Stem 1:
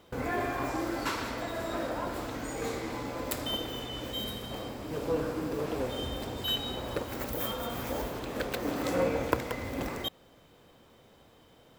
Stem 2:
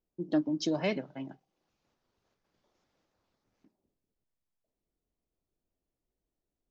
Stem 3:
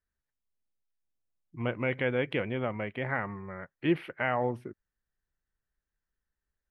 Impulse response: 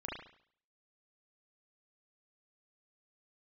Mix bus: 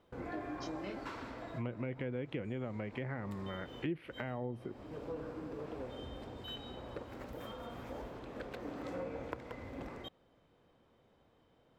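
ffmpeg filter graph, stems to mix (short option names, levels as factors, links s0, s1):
-filter_complex "[0:a]aemphasis=mode=reproduction:type=75fm,volume=0.299[s0];[1:a]flanger=delay=19.5:depth=5.8:speed=0.55,volume=0.335[s1];[2:a]acrossover=split=450[s2][s3];[s3]acompressor=threshold=0.00891:ratio=6[s4];[s2][s4]amix=inputs=2:normalize=0,volume=1.33,asplit=2[s5][s6];[s6]apad=whole_len=519498[s7];[s0][s7]sidechaincompress=threshold=0.0141:ratio=8:attack=16:release=188[s8];[s8][s1][s5]amix=inputs=3:normalize=0,acompressor=threshold=0.0126:ratio=3"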